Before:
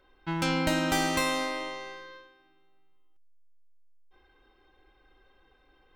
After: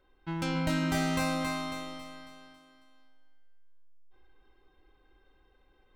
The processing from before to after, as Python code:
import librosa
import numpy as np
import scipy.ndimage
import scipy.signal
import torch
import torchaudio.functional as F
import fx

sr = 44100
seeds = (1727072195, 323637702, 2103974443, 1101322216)

y = fx.low_shelf(x, sr, hz=400.0, db=5.5)
y = fx.echo_feedback(y, sr, ms=274, feedback_pct=46, wet_db=-4.5)
y = y * 10.0 ** (-7.0 / 20.0)